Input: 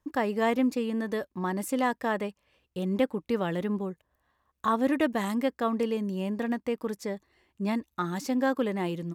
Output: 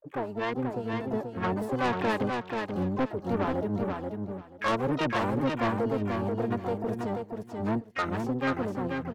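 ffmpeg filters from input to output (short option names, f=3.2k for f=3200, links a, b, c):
-filter_complex "[0:a]afwtdn=0.0224,tiltshelf=f=650:g=-5,acrossover=split=3200[a][b];[b]acompressor=threshold=-54dB:ratio=4:attack=1:release=60[c];[a][c]amix=inputs=2:normalize=0,equalizer=f=2.6k:w=3.8:g=-2.5,dynaudnorm=f=200:g=11:m=8.5dB,asplit=4[d][e][f][g];[e]asetrate=22050,aresample=44100,atempo=2,volume=-5dB[h];[f]asetrate=66075,aresample=44100,atempo=0.66742,volume=-8dB[i];[g]asetrate=88200,aresample=44100,atempo=0.5,volume=-17dB[j];[d][h][i][j]amix=inputs=4:normalize=0,acrossover=split=930[k][l];[k]aeval=exprs='val(0)*(1-0.5/2+0.5/2*cos(2*PI*5.3*n/s))':c=same[m];[l]aeval=exprs='val(0)*(1-0.5/2-0.5/2*cos(2*PI*5.3*n/s))':c=same[n];[m][n]amix=inputs=2:normalize=0,asoftclip=type=tanh:threshold=-20dB,aecho=1:1:484|968|1452:0.596|0.113|0.0215,volume=-2.5dB"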